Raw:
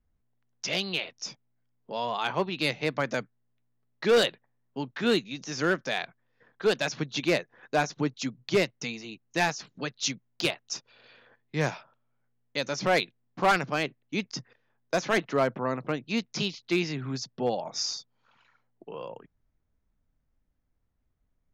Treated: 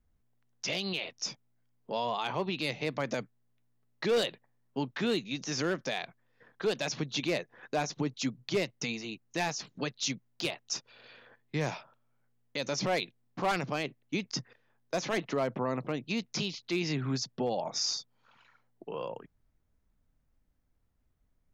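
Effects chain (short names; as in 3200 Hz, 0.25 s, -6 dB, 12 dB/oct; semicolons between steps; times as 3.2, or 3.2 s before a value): dynamic EQ 1500 Hz, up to -5 dB, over -46 dBFS, Q 2.6; limiter -23.5 dBFS, peak gain reduction 8 dB; gain +1.5 dB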